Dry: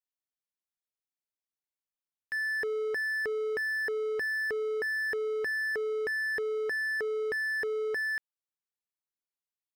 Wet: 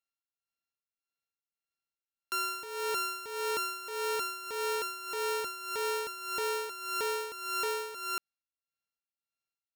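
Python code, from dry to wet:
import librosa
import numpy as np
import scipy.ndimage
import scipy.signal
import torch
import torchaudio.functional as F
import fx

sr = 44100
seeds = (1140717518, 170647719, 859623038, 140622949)

y = np.r_[np.sort(x[:len(x) // 32 * 32].reshape(-1, 32), axis=1).ravel(), x[len(x) // 32 * 32:]]
y = y * (1.0 - 0.75 / 2.0 + 0.75 / 2.0 * np.cos(2.0 * np.pi * 1.7 * (np.arange(len(y)) / sr)))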